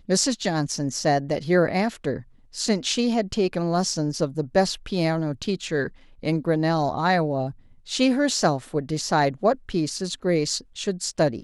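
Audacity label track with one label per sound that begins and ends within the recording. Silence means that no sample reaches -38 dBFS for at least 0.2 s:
2.540000	5.880000	sound
6.230000	7.510000	sound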